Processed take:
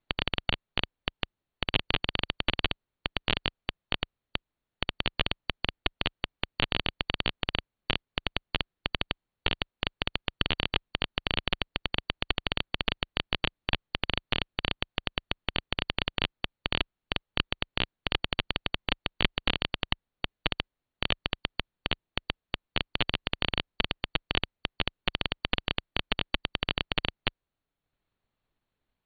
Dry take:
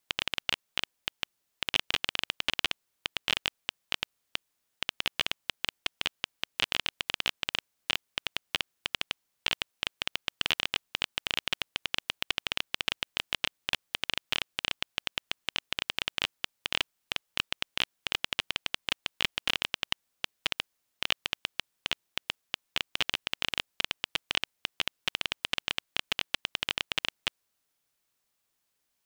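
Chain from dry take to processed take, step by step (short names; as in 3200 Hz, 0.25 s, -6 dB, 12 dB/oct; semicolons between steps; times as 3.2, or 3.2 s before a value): tilt -3 dB/oct; transient shaper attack +5 dB, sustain -4 dB; brick-wall FIR low-pass 4500 Hz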